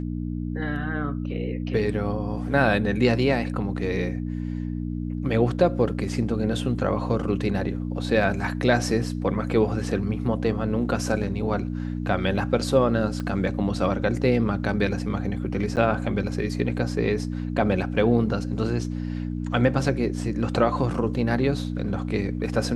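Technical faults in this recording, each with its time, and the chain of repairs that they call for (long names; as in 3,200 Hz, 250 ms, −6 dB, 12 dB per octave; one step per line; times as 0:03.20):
mains hum 60 Hz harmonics 5 −29 dBFS
0:13.20: click −19 dBFS
0:15.76–0:15.77: drop-out 9 ms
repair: click removal
hum removal 60 Hz, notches 5
repair the gap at 0:15.76, 9 ms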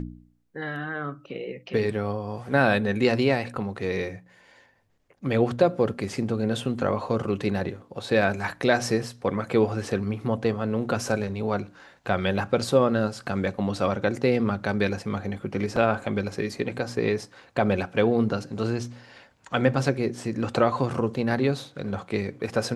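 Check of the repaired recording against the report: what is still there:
0:13.20: click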